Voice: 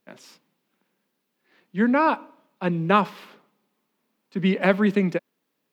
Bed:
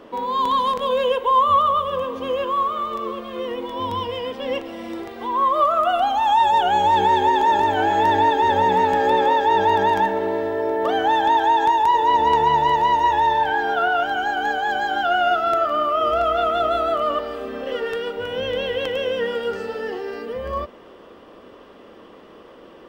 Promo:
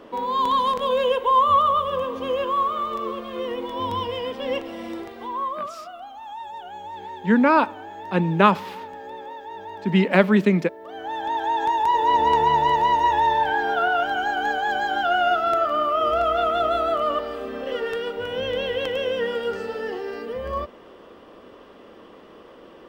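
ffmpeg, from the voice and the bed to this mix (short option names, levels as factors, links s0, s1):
-filter_complex "[0:a]adelay=5500,volume=1.41[s0];[1:a]volume=7.08,afade=t=out:st=4.85:d=0.9:silence=0.11885,afade=t=in:st=10.85:d=1.29:silence=0.125893[s1];[s0][s1]amix=inputs=2:normalize=0"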